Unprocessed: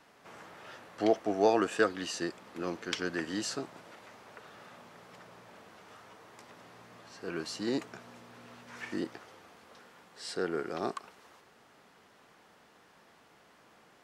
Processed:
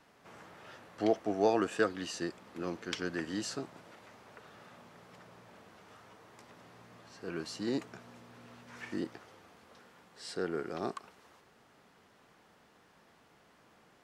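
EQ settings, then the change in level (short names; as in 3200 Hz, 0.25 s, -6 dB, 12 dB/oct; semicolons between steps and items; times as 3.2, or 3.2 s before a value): low shelf 220 Hz +6 dB; -3.5 dB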